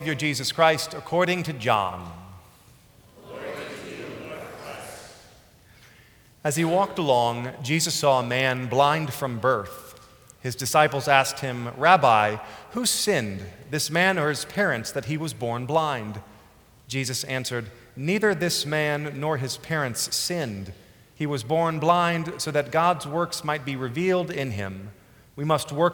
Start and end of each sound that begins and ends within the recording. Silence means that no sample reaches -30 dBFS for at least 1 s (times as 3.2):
3.32–4.98